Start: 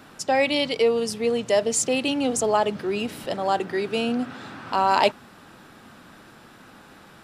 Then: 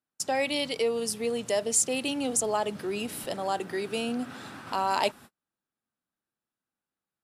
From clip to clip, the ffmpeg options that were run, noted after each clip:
-filter_complex "[0:a]agate=range=0.00794:threshold=0.0112:ratio=16:detection=peak,equalizer=f=11000:w=0.73:g=12,asplit=2[s0][s1];[s1]acompressor=threshold=0.0355:ratio=6,volume=0.891[s2];[s0][s2]amix=inputs=2:normalize=0,volume=0.355"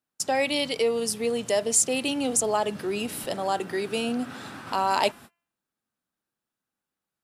-af "bandreject=f=341.7:t=h:w=4,bandreject=f=683.4:t=h:w=4,bandreject=f=1025.1:t=h:w=4,bandreject=f=1366.8:t=h:w=4,bandreject=f=1708.5:t=h:w=4,bandreject=f=2050.2:t=h:w=4,bandreject=f=2391.9:t=h:w=4,bandreject=f=2733.6:t=h:w=4,bandreject=f=3075.3:t=h:w=4,volume=1.41"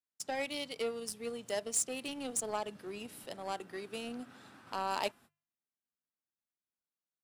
-af "bandreject=f=50:t=h:w=6,bandreject=f=100:t=h:w=6,bandreject=f=150:t=h:w=6,aeval=exprs='0.473*(cos(1*acos(clip(val(0)/0.473,-1,1)))-cos(1*PI/2))+0.0266*(cos(5*acos(clip(val(0)/0.473,-1,1)))-cos(5*PI/2))+0.0596*(cos(7*acos(clip(val(0)/0.473,-1,1)))-cos(7*PI/2))':c=same,asoftclip=type=tanh:threshold=0.251,volume=0.376"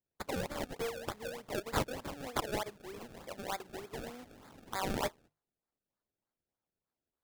-filter_complex "[0:a]acrossover=split=410|1500[s0][s1][s2];[s0]acompressor=threshold=0.00158:ratio=6[s3];[s3][s1][s2]amix=inputs=3:normalize=0,acrusher=samples=30:mix=1:aa=0.000001:lfo=1:lforange=30:lforate=3.3,volume=1.12"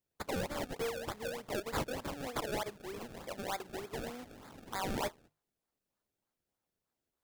-af "asoftclip=type=tanh:threshold=0.0237,volume=1.41"

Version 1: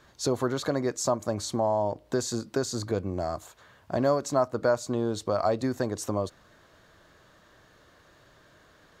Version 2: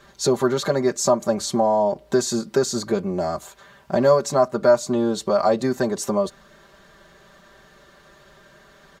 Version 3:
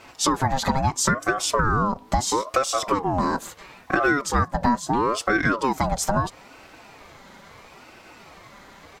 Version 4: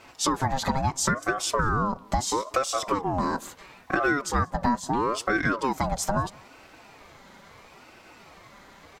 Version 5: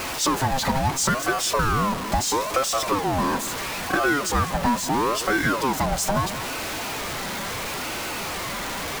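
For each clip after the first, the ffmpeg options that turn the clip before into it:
-af "aecho=1:1:5.1:0.91,volume=1.68"
-af "acompressor=threshold=0.0708:ratio=4,aeval=exprs='val(0)*sin(2*PI*650*n/s+650*0.45/0.75*sin(2*PI*0.75*n/s))':c=same,volume=2.24"
-filter_complex "[0:a]asplit=2[s0][s1];[s1]adelay=186.6,volume=0.0501,highshelf=f=4000:g=-4.2[s2];[s0][s2]amix=inputs=2:normalize=0,volume=0.668"
-af "aeval=exprs='val(0)+0.5*0.0596*sgn(val(0))':c=same"

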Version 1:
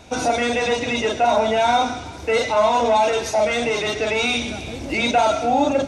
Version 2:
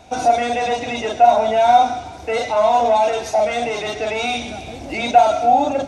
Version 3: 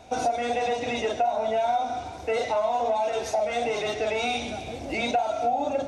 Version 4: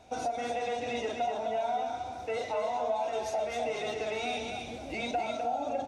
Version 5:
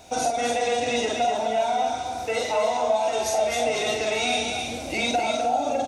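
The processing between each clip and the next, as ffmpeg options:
-af "equalizer=f=730:t=o:w=0.32:g=11,volume=0.708"
-af "equalizer=f=500:w=2:g=3.5,flanger=delay=7.5:depth=4.8:regen=-77:speed=1.3:shape=sinusoidal,acompressor=threshold=0.0794:ratio=6"
-af "aecho=1:1:257:0.531,volume=0.422"
-filter_complex "[0:a]crystalizer=i=2.5:c=0,asplit=2[s0][s1];[s1]adelay=46,volume=0.531[s2];[s0][s2]amix=inputs=2:normalize=0,volume=2.11"

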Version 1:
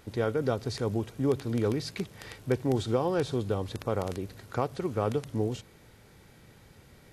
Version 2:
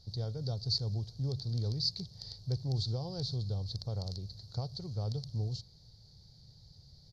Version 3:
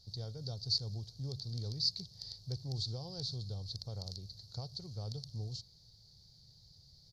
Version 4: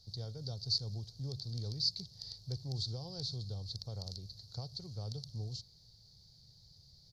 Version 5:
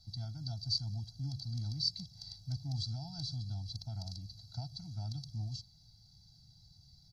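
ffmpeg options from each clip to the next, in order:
-af "firequalizer=gain_entry='entry(140,0);entry(260,-20);entry(690,-13);entry(1200,-25);entry(2600,-28);entry(4400,12);entry(8000,-20)':delay=0.05:min_phase=1"
-af "highshelf=f=3100:g=9.5,volume=0.473"
-filter_complex "[0:a]acrossover=split=320|3000[s0][s1][s2];[s1]acompressor=threshold=0.00501:ratio=6[s3];[s0][s3][s2]amix=inputs=3:normalize=0"
-af "afftfilt=real='re*eq(mod(floor(b*sr/1024/320),2),0)':imag='im*eq(mod(floor(b*sr/1024/320),2),0)':win_size=1024:overlap=0.75,volume=1.26"

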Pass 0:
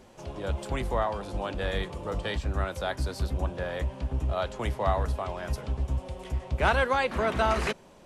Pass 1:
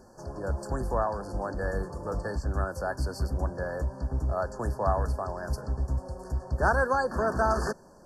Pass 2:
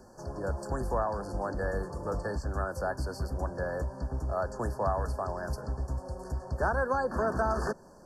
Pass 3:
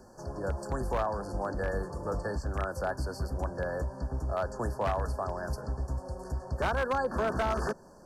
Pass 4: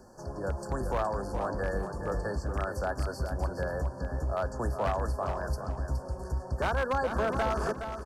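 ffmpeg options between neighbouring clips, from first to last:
-af "afftfilt=real='re*(1-between(b*sr/4096,1800,4300))':imag='im*(1-between(b*sr/4096,1800,4300))':win_size=4096:overlap=0.75"
-filter_complex "[0:a]acrossover=split=380|1700[s0][s1][s2];[s0]acompressor=threshold=0.0316:ratio=4[s3];[s1]acompressor=threshold=0.0447:ratio=4[s4];[s2]acompressor=threshold=0.00501:ratio=4[s5];[s3][s4][s5]amix=inputs=3:normalize=0"
-af "aeval=exprs='0.0794*(abs(mod(val(0)/0.0794+3,4)-2)-1)':c=same"
-af "aecho=1:1:418|836|1254:0.398|0.0796|0.0159"

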